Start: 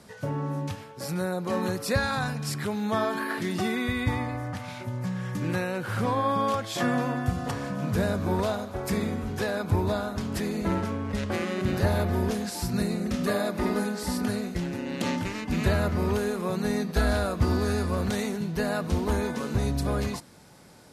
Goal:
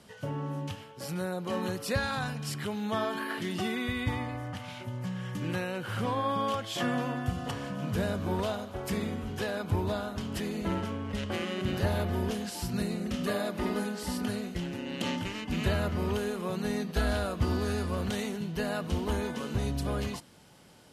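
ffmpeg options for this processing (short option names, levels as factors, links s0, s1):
-af "equalizer=f=3000:w=5.7:g=10.5,volume=0.596"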